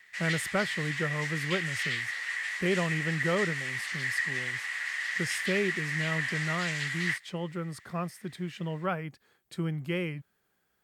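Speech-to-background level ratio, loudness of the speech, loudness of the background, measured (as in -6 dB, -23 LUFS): -2.5 dB, -34.0 LUFS, -31.5 LUFS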